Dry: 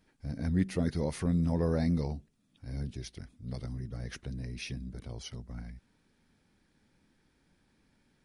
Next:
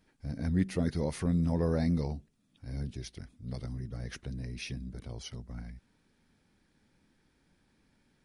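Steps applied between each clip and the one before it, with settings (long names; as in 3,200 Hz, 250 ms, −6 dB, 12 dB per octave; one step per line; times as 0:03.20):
no processing that can be heard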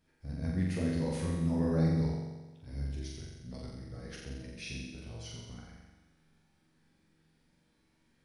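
tuned comb filter 80 Hz, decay 0.18 s, harmonics all, mix 80%
flutter between parallel walls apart 7.5 metres, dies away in 1.2 s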